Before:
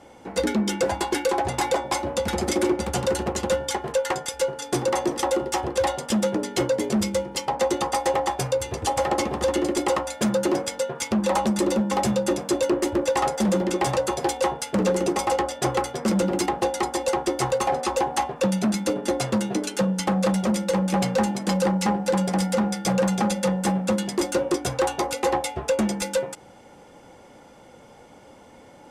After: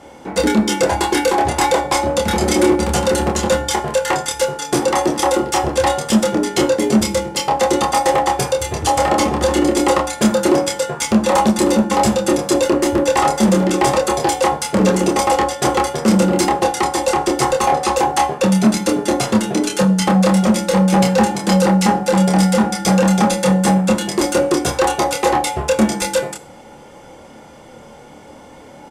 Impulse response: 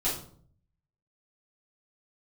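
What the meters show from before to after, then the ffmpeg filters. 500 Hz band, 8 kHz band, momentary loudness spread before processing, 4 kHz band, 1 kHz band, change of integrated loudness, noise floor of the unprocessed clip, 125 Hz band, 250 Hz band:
+7.0 dB, +8.5 dB, 3 LU, +8.5 dB, +9.0 dB, +8.0 dB, -49 dBFS, +9.0 dB, +8.5 dB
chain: -filter_complex "[0:a]asplit=2[s0][s1];[s1]adelay=27,volume=0.631[s2];[s0][s2]amix=inputs=2:normalize=0,asplit=2[s3][s4];[1:a]atrim=start_sample=2205,asetrate=37044,aresample=44100,highshelf=f=10000:g=8.5[s5];[s4][s5]afir=irnorm=-1:irlink=0,volume=0.0668[s6];[s3][s6]amix=inputs=2:normalize=0,volume=2.11"

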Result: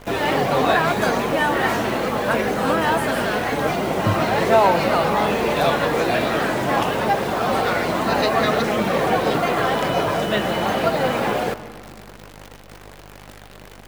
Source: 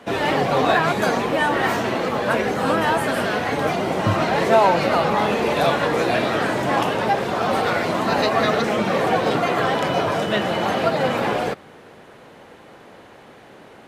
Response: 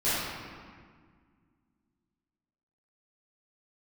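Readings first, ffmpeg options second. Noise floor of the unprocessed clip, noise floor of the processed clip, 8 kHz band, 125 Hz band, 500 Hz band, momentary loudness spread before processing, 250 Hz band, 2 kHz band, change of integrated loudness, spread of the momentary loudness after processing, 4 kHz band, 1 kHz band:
-46 dBFS, -42 dBFS, +2.0 dB, +0.5 dB, 0.0 dB, 4 LU, +0.5 dB, 0.0 dB, 0.0 dB, 4 LU, +0.5 dB, 0.0 dB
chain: -filter_complex "[0:a]aeval=exprs='val(0)+0.00708*(sin(2*PI*50*n/s)+sin(2*PI*2*50*n/s)/2+sin(2*PI*3*50*n/s)/3+sin(2*PI*4*50*n/s)/4+sin(2*PI*5*50*n/s)/5)':c=same,acrusher=bits=7:dc=4:mix=0:aa=0.000001,asplit=2[s0][s1];[1:a]atrim=start_sample=2205,adelay=127[s2];[s1][s2]afir=irnorm=-1:irlink=0,volume=0.0422[s3];[s0][s3]amix=inputs=2:normalize=0"

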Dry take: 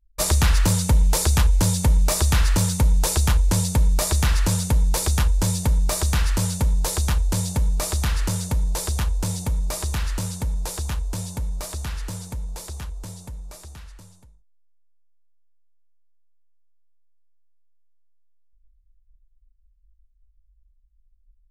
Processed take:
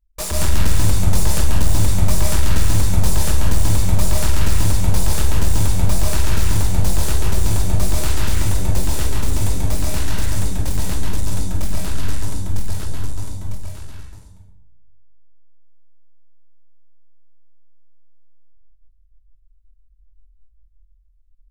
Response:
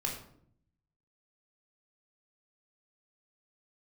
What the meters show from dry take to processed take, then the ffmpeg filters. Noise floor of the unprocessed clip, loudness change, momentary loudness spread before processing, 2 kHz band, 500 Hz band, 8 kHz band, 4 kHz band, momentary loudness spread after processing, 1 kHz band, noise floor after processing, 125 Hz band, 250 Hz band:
-60 dBFS, +1.0 dB, 14 LU, +1.0 dB, +2.5 dB, 0.0 dB, +1.0 dB, 9 LU, +1.0 dB, -53 dBFS, +2.5 dB, +2.0 dB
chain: -filter_complex "[0:a]acontrast=31,volume=4.22,asoftclip=hard,volume=0.237,aeval=exprs='0.251*(cos(1*acos(clip(val(0)/0.251,-1,1)))-cos(1*PI/2))+0.0631*(cos(8*acos(clip(val(0)/0.251,-1,1)))-cos(8*PI/2))':c=same,asplit=2[s0][s1];[1:a]atrim=start_sample=2205,asetrate=33957,aresample=44100,adelay=138[s2];[s1][s2]afir=irnorm=-1:irlink=0,volume=0.75[s3];[s0][s3]amix=inputs=2:normalize=0,volume=0.376"

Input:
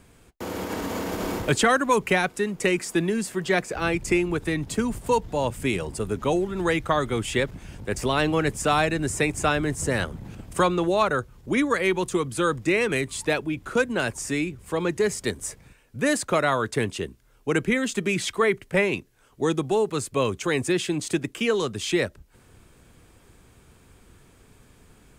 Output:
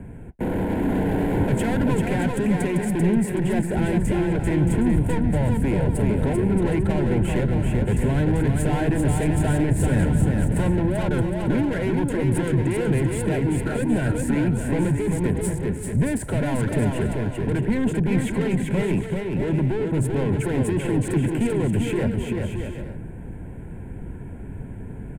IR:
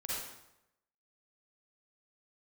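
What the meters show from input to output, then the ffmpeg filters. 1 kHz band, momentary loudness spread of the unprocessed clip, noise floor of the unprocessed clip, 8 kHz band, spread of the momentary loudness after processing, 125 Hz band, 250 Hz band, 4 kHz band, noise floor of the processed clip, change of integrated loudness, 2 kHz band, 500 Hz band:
-5.0 dB, 8 LU, -56 dBFS, -4.0 dB, 9 LU, +11.0 dB, +5.5 dB, -9.0 dB, -35 dBFS, +2.5 dB, -6.0 dB, -1.0 dB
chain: -filter_complex "[0:a]acrossover=split=160|3200[s0][s1][s2];[s1]aeval=exprs='0.376*sin(PI/2*1.78*val(0)/0.376)':c=same[s3];[s0][s3][s2]amix=inputs=3:normalize=0,equalizer=f=4100:t=o:w=1.2:g=-13,acompressor=threshold=0.112:ratio=6,asoftclip=type=tanh:threshold=0.0398,bass=f=250:g=15,treble=f=4000:g=-12,aexciter=amount=15.2:drive=4.9:freq=8000,adynamicsmooth=sensitivity=4.5:basefreq=5100,asuperstop=centerf=1200:order=4:qfactor=3.3,aecho=1:1:390|624|764.4|848.6|899.2:0.631|0.398|0.251|0.158|0.1,volume=1.26"

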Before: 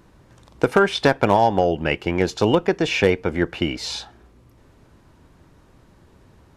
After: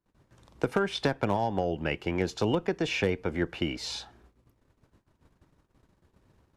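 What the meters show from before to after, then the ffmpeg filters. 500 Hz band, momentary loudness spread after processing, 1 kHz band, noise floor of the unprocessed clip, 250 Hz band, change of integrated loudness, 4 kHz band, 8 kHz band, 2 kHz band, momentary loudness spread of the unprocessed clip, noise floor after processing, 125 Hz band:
-10.5 dB, 5 LU, -12.0 dB, -54 dBFS, -8.5 dB, -9.5 dB, -8.0 dB, -8.0 dB, -10.0 dB, 8 LU, -73 dBFS, -7.0 dB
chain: -filter_complex "[0:a]agate=range=0.0501:threshold=0.00316:ratio=16:detection=peak,acrossover=split=270[s0][s1];[s1]acompressor=threshold=0.1:ratio=2.5[s2];[s0][s2]amix=inputs=2:normalize=0,volume=0.447"

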